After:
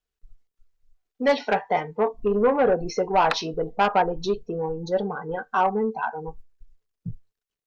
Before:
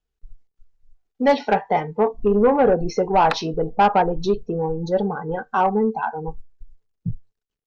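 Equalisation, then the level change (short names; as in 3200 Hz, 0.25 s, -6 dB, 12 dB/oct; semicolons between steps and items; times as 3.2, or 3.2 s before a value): low shelf 420 Hz -8 dB; notch 830 Hz, Q 12; 0.0 dB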